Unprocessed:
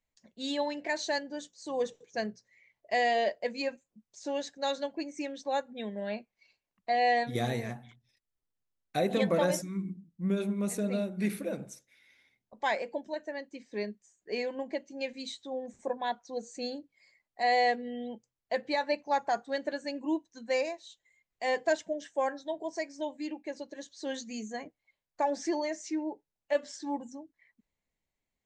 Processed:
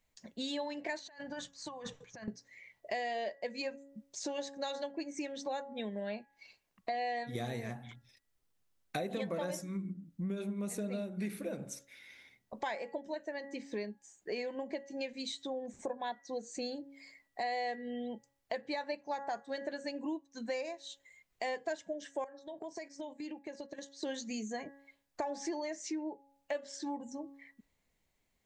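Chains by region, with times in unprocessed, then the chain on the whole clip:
0.99–2.28 EQ curve 130 Hz 0 dB, 360 Hz -20 dB, 1100 Hz -2 dB, 7300 Hz -15 dB + negative-ratio compressor -52 dBFS
22.24–24.03 gate -46 dBFS, range -10 dB + compressor 5:1, threshold -48 dBFS
whole clip: de-hum 277.8 Hz, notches 7; compressor 4:1, threshold -46 dBFS; gain +8 dB

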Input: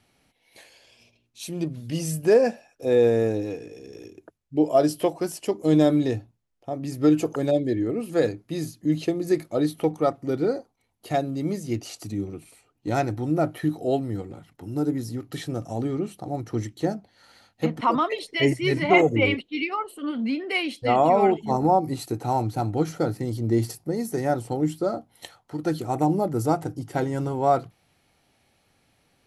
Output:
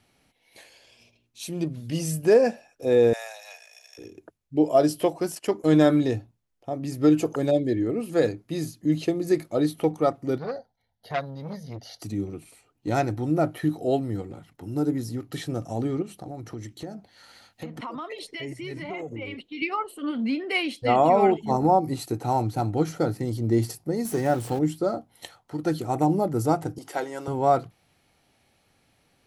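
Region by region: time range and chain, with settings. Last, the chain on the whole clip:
3.13–3.98 Chebyshev high-pass 610 Hz, order 6 + tilt +2.5 dB/oct
5.35–6.01 gate -42 dBFS, range -11 dB + bell 1500 Hz +8.5 dB 1 oct
10.38–12.02 high shelf 8900 Hz -8.5 dB + fixed phaser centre 1700 Hz, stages 8 + core saturation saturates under 1300 Hz
16.02–19.62 compressor 5:1, threshold -33 dBFS + mismatched tape noise reduction encoder only
24.05–24.59 zero-crossing step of -35.5 dBFS + HPF 61 Hz
26.78–27.28 HPF 490 Hz + upward compressor, threshold -34 dBFS
whole clip: dry

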